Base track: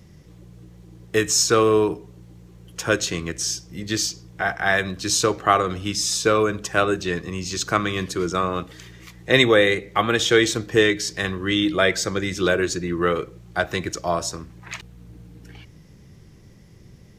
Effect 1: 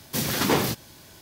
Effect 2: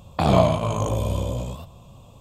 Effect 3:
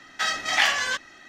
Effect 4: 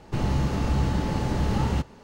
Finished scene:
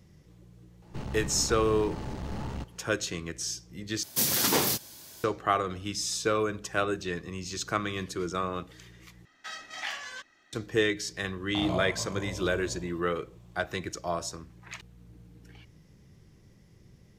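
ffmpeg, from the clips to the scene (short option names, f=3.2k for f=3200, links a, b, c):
-filter_complex "[0:a]volume=-8.5dB[a];[4:a]aeval=exprs='(tanh(15.8*val(0)+0.55)-tanh(0.55))/15.8':c=same[b];[1:a]bass=f=250:g=-4,treble=f=4k:g=9[c];[a]asplit=3[d][e][f];[d]atrim=end=4.034[g];[c]atrim=end=1.21,asetpts=PTS-STARTPTS,volume=-4.5dB[h];[e]atrim=start=5.236:end=9.254[i];[3:a]atrim=end=1.28,asetpts=PTS-STARTPTS,volume=-15dB[j];[f]atrim=start=10.526[k];[b]atrim=end=2.03,asetpts=PTS-STARTPTS,volume=-7dB,afade=t=in:d=0.004:c=hsin,afade=t=out:st=2.026:d=0.004:c=hsin,adelay=820[l];[2:a]atrim=end=2.2,asetpts=PTS-STARTPTS,volume=-15.5dB,afade=t=in:d=0.004:c=hsin,afade=t=out:st=2.196:d=0.004:c=hsin,adelay=11360[m];[g][h]acrossfade=d=0.004:c1=hsin:c2=hsin[n];[n][i]acrossfade=d=0.004:c1=hsin:c2=hsin[o];[o][j]acrossfade=d=0.004:c1=hsin:c2=hsin[p];[p][k]acrossfade=d=0.004:c1=hsin:c2=hsin[q];[q][l][m]amix=inputs=3:normalize=0"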